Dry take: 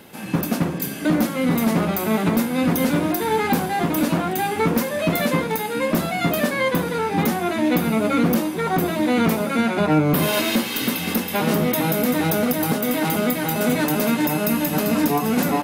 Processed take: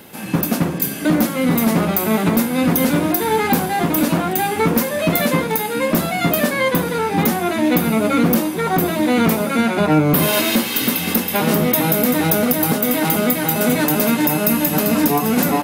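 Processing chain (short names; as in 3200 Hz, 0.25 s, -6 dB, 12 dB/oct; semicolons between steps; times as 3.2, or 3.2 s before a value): high shelf 9900 Hz +6.5 dB; gain +3 dB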